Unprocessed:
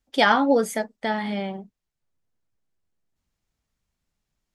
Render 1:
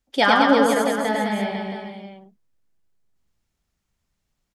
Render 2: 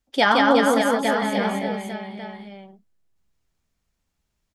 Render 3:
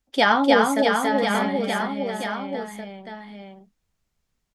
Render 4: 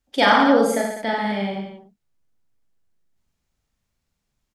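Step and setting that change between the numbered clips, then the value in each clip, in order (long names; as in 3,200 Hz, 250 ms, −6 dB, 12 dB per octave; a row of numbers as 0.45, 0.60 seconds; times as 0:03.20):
reverse bouncing-ball delay, first gap: 100, 170, 300, 40 milliseconds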